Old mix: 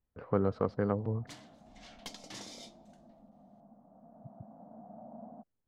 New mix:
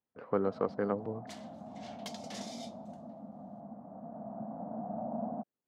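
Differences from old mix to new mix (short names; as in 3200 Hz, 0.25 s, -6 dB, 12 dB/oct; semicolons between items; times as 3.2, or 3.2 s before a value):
speech: add HPF 220 Hz 12 dB/oct; first sound +11.5 dB; second sound: add steep high-pass 340 Hz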